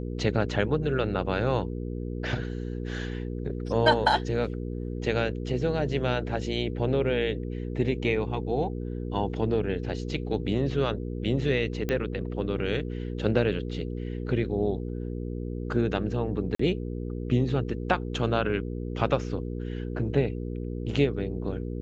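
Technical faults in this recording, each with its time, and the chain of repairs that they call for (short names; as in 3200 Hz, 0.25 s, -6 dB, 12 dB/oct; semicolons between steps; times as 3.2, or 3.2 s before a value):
hum 60 Hz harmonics 8 -33 dBFS
11.89 pop -16 dBFS
16.55–16.59 gap 44 ms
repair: de-click; de-hum 60 Hz, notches 8; interpolate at 16.55, 44 ms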